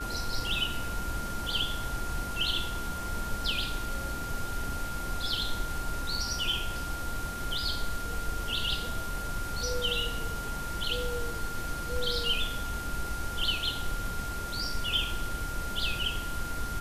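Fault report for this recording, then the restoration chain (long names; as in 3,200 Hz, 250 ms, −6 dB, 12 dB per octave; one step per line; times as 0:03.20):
whistle 1,400 Hz −37 dBFS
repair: notch filter 1,400 Hz, Q 30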